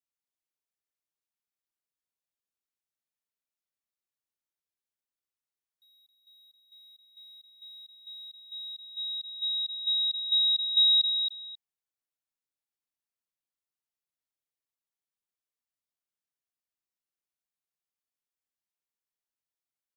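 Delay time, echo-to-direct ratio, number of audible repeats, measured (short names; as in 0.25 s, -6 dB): 0.269 s, -7.0 dB, 2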